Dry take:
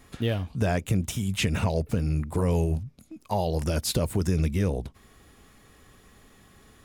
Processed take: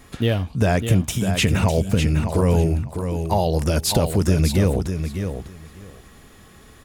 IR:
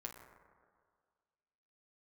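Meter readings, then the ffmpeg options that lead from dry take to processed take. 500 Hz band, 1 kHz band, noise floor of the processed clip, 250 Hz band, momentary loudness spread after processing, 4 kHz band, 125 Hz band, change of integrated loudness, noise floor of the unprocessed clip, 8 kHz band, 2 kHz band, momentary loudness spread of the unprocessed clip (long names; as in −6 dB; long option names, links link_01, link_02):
+7.0 dB, +7.0 dB, −48 dBFS, +7.0 dB, 8 LU, +7.0 dB, +7.0 dB, +6.5 dB, −57 dBFS, +7.0 dB, +7.0 dB, 5 LU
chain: -af "aecho=1:1:602|1204|1806:0.422|0.0675|0.0108,volume=6.5dB"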